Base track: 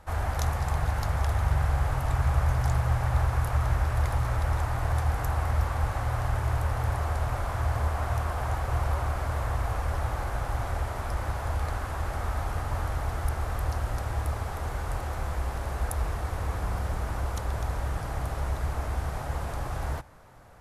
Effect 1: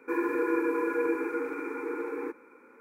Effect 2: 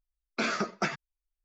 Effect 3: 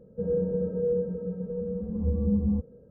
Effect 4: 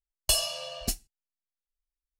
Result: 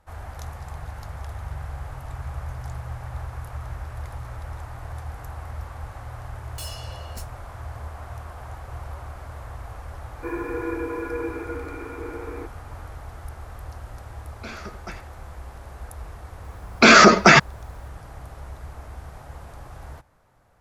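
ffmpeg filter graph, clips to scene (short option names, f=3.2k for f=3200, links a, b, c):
-filter_complex "[2:a]asplit=2[a][b];[0:a]volume=-8.5dB[c];[4:a]asoftclip=type=tanh:threshold=-27.5dB[d];[a]asplit=2[e][f];[f]adelay=80,highpass=300,lowpass=3.4k,asoftclip=type=hard:threshold=-27dB,volume=-9dB[g];[e][g]amix=inputs=2:normalize=0[h];[b]alimiter=level_in=28.5dB:limit=-1dB:release=50:level=0:latency=1[i];[d]atrim=end=2.19,asetpts=PTS-STARTPTS,volume=-6dB,afade=t=in:d=0.004:c=hsin,afade=t=out:st=2.186:d=0.004:c=hsin,adelay=6290[j];[1:a]atrim=end=2.8,asetpts=PTS-STARTPTS,volume=-1.5dB,afade=t=in:d=0.004:c=hsin,afade=t=out:st=2.796:d=0.004:c=hsin,adelay=10150[k];[h]atrim=end=1.44,asetpts=PTS-STARTPTS,volume=-8.5dB,afade=t=in:d=0.004:c=hsin,afade=t=out:st=1.436:d=0.004:c=hsin,adelay=14050[l];[i]atrim=end=1.44,asetpts=PTS-STARTPTS,volume=-0.5dB,afade=t=in:d=0.004:c=hsin,afade=t=out:st=1.436:d=0.004:c=hsin,adelay=16440[m];[c][j][k][l][m]amix=inputs=5:normalize=0"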